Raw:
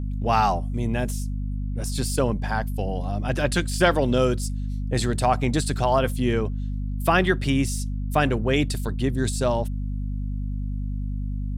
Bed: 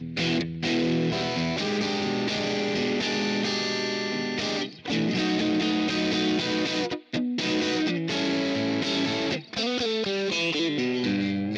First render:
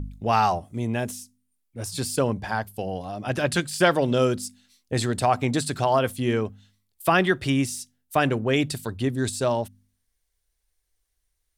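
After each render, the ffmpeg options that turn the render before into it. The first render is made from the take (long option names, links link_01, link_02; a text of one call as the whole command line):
ffmpeg -i in.wav -af "bandreject=frequency=50:width_type=h:width=4,bandreject=frequency=100:width_type=h:width=4,bandreject=frequency=150:width_type=h:width=4,bandreject=frequency=200:width_type=h:width=4,bandreject=frequency=250:width_type=h:width=4" out.wav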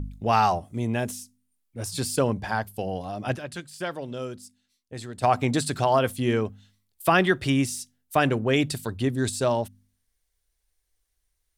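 ffmpeg -i in.wav -filter_complex "[0:a]asplit=3[link_01][link_02][link_03];[link_01]atrim=end=3.48,asetpts=PTS-STARTPTS,afade=type=out:start_time=3.35:duration=0.13:curve=exp:silence=0.237137[link_04];[link_02]atrim=start=3.48:end=5.11,asetpts=PTS-STARTPTS,volume=-12.5dB[link_05];[link_03]atrim=start=5.11,asetpts=PTS-STARTPTS,afade=type=in:duration=0.13:curve=exp:silence=0.237137[link_06];[link_04][link_05][link_06]concat=n=3:v=0:a=1" out.wav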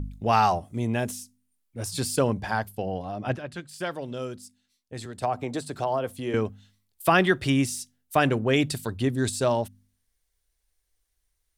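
ffmpeg -i in.wav -filter_complex "[0:a]asettb=1/sr,asplit=3[link_01][link_02][link_03];[link_01]atrim=end=2.754[link_04];[link_02]atrim=start=2.75:end=3.69,asetpts=PTS-STARTPTS,afade=type=in:duration=0.004:curve=qsin,afade=type=out:start_time=0.936:duration=0.004:curve=qsin,lowpass=frequency=2700:poles=1[link_05];[link_03]atrim=start=3.686[link_06];[link_04][link_05]acrossfade=duration=0.004:curve1=hsin:curve2=qsin[link_07];[link_07][link_06]acrossfade=duration=0.004:curve1=qsin:curve2=hsin,asettb=1/sr,asplit=3[link_08][link_09][link_10];[link_08]atrim=end=5.054[link_11];[link_09]atrim=start=5.05:end=6.34,asetpts=PTS-STARTPTS,afade=type=in:duration=0.004:curve=qsin,afade=type=out:start_time=1.286:duration=0.004:curve=qsin,acrossover=split=380|940[link_12][link_13][link_14];[link_12]acompressor=threshold=-37dB:ratio=4[link_15];[link_13]acompressor=threshold=-25dB:ratio=4[link_16];[link_14]acompressor=threshold=-41dB:ratio=4[link_17];[link_15][link_16][link_17]amix=inputs=3:normalize=0[link_18];[link_10]atrim=start=6.336[link_19];[link_11][link_18]acrossfade=duration=0.004:curve1=hsin:curve2=qsin[link_20];[link_20][link_19]acrossfade=duration=0.004:curve1=qsin:curve2=hsin" out.wav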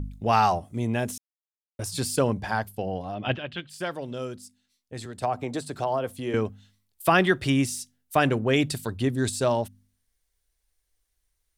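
ffmpeg -i in.wav -filter_complex "[0:a]asplit=3[link_01][link_02][link_03];[link_01]afade=type=out:start_time=3.14:duration=0.02[link_04];[link_02]lowpass=frequency=3100:width_type=q:width=5.3,afade=type=in:start_time=3.14:duration=0.02,afade=type=out:start_time=3.69:duration=0.02[link_05];[link_03]afade=type=in:start_time=3.69:duration=0.02[link_06];[link_04][link_05][link_06]amix=inputs=3:normalize=0,asplit=3[link_07][link_08][link_09];[link_07]atrim=end=1.18,asetpts=PTS-STARTPTS,afade=type=out:start_time=1.176:duration=0.004:curve=hsin[link_10];[link_08]atrim=start=1.18:end=1.79,asetpts=PTS-STARTPTS,volume=0[link_11];[link_09]atrim=start=1.79,asetpts=PTS-STARTPTS,afade=type=in:duration=0.004:curve=hsin[link_12];[link_10][link_11][link_12]concat=n=3:v=0:a=1" out.wav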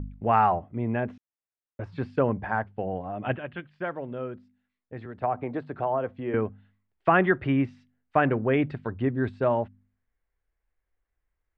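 ffmpeg -i in.wav -af "lowpass=frequency=2100:width=0.5412,lowpass=frequency=2100:width=1.3066,lowshelf=frequency=160:gain=-3" out.wav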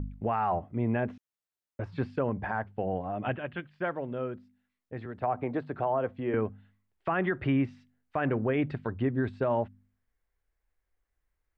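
ffmpeg -i in.wav -af "alimiter=limit=-18.5dB:level=0:latency=1:release=108" out.wav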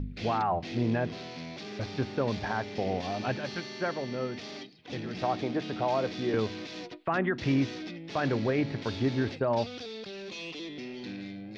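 ffmpeg -i in.wav -i bed.wav -filter_complex "[1:a]volume=-14dB[link_01];[0:a][link_01]amix=inputs=2:normalize=0" out.wav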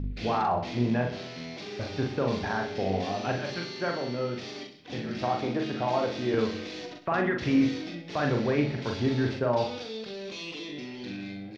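ffmpeg -i in.wav -filter_complex "[0:a]asplit=2[link_01][link_02];[link_02]adelay=41,volume=-3.5dB[link_03];[link_01][link_03]amix=inputs=2:normalize=0,aecho=1:1:63|126|189|252|315|378:0.266|0.138|0.0719|0.0374|0.0195|0.0101" out.wav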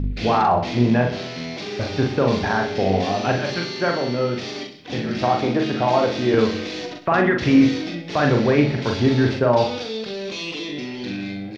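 ffmpeg -i in.wav -af "volume=9dB" out.wav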